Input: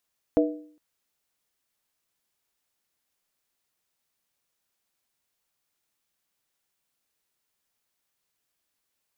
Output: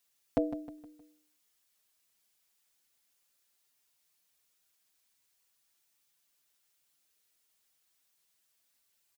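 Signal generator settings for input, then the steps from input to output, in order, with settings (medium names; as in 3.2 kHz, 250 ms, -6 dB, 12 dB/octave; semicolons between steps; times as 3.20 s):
skin hit length 0.41 s, lowest mode 303 Hz, modes 3, decay 0.56 s, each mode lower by 2 dB, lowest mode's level -17 dB
treble shelf 2 kHz +8 dB; on a send: feedback delay 156 ms, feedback 43%, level -12 dB; on the sum: endless flanger 5.5 ms +0.34 Hz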